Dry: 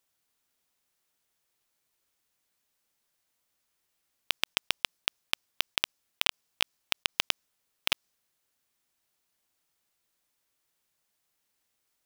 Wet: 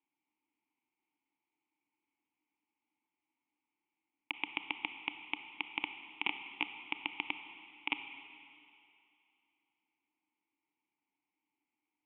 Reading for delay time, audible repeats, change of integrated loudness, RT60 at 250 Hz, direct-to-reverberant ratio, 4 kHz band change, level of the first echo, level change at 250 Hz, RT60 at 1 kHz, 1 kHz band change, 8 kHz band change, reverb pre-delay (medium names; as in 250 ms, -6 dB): no echo, no echo, -8.0 dB, 2.3 s, 8.0 dB, -12.5 dB, no echo, +3.5 dB, 2.7 s, -3.0 dB, under -35 dB, 26 ms